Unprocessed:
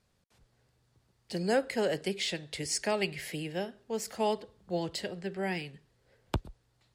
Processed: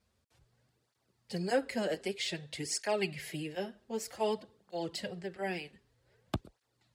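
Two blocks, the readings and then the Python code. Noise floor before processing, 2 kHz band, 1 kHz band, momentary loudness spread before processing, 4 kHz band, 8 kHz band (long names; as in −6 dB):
−73 dBFS, −3.0 dB, −3.0 dB, 8 LU, −3.0 dB, −3.0 dB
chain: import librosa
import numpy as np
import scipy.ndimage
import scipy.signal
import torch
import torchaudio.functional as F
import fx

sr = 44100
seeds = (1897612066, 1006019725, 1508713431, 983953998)

y = fx.flanger_cancel(x, sr, hz=0.53, depth_ms=7.6)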